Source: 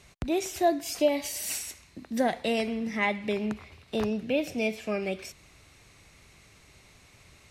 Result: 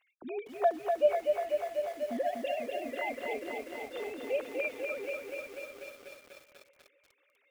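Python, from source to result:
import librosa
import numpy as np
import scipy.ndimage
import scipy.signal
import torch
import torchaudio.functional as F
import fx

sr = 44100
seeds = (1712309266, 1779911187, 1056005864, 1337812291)

y = fx.sine_speech(x, sr)
y = fx.echo_heads(y, sr, ms=263, heads='first and third', feedback_pct=41, wet_db=-16.0)
y = fx.echo_crushed(y, sr, ms=245, feedback_pct=80, bits=8, wet_db=-4)
y = y * 10.0 ** (-6.5 / 20.0)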